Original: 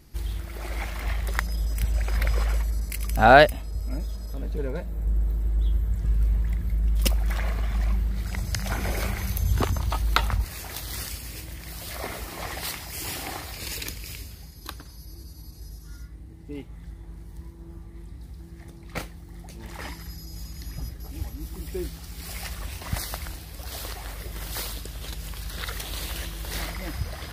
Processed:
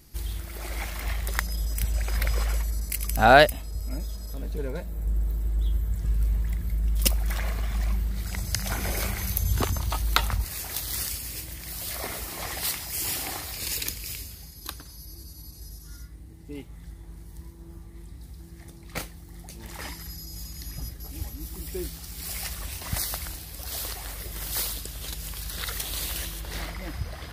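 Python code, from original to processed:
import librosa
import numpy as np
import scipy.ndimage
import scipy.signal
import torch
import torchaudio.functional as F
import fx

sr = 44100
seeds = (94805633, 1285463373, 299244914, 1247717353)

y = fx.high_shelf(x, sr, hz=4500.0, db=fx.steps((0.0, 9.0), (26.39, -3.0)))
y = F.gain(torch.from_numpy(y), -2.0).numpy()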